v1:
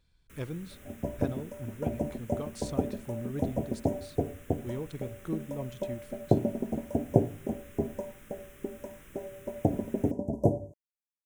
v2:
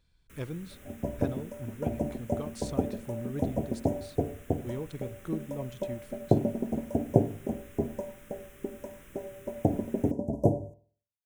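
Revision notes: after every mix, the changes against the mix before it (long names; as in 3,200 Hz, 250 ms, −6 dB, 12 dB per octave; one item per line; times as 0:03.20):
second sound: send on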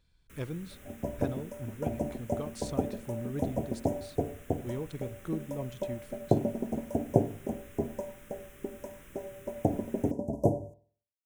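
second sound: add tilt shelving filter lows −3 dB, about 710 Hz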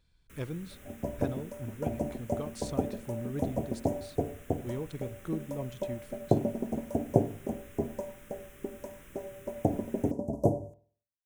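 second sound: remove linear-phase brick-wall band-stop 1,100–4,800 Hz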